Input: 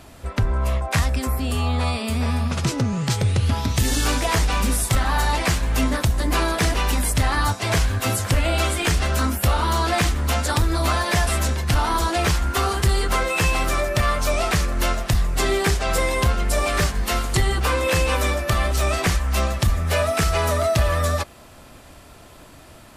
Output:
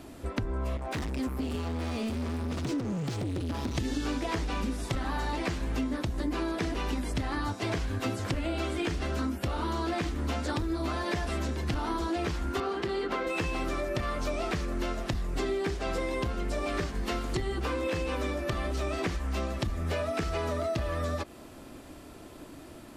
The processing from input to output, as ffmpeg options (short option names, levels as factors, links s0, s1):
-filter_complex "[0:a]asettb=1/sr,asplit=3[s0][s1][s2];[s0]atrim=end=0.774[s3];[s1]atrim=start=0.77:end=3.75,asetpts=PTS-STARTPTS,afade=t=in:d=0.004:c=qsin,afade=t=out:st=2.976:d=0.004:c=qsin,asoftclip=type=hard:threshold=0.0501[s4];[s2]atrim=start=3.746[s5];[s3][s4]acrossfade=d=0.004:c1=hsin:c2=qsin[s6];[s6][s5]acrossfade=d=0.004:c1=qsin:c2=hsin,asettb=1/sr,asplit=3[s7][s8][s9];[s7]atrim=end=12.604[s10];[s8]atrim=start=12.6:end=13.27,asetpts=PTS-STARTPTS,afade=t=in:d=0.004:c=qsin,afade=t=out:st=0.666:d=0.004:c=qsin,acrossover=split=180 4600:gain=0.126 1 0.0891[s11][s12][s13];[s11][s12][s13]amix=inputs=3:normalize=0[s14];[s9]atrim=start=13.266[s15];[s10][s14]acrossfade=d=0.004:c1=hsin:c2=qsin[s16];[s16][s15]acrossfade=d=0.004:c1=qsin:c2=hsin,acrossover=split=6200[s17][s18];[s18]acompressor=threshold=0.00562:ratio=4:attack=1:release=60[s19];[s17][s19]amix=inputs=2:normalize=0,equalizer=f=310:t=o:w=1.1:g=11.5,acompressor=threshold=0.0794:ratio=6,volume=0.501"